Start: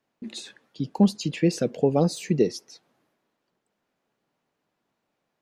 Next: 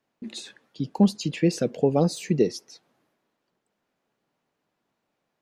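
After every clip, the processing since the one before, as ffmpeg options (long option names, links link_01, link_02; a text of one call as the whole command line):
ffmpeg -i in.wav -af anull out.wav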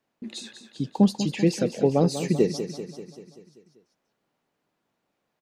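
ffmpeg -i in.wav -af "aecho=1:1:194|388|582|776|970|1164|1358:0.299|0.176|0.104|0.0613|0.0362|0.0213|0.0126" out.wav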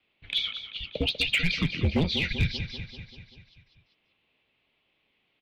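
ffmpeg -i in.wav -af "highpass=frequency=420:width_type=q:width=0.5412,highpass=frequency=420:width_type=q:width=1.307,lowpass=frequency=3300:width_type=q:width=0.5176,lowpass=frequency=3300:width_type=q:width=0.7071,lowpass=frequency=3300:width_type=q:width=1.932,afreqshift=-330,aexciter=amount=6.2:drive=8.4:freq=2300,asoftclip=type=hard:threshold=-19dB,volume=1.5dB" out.wav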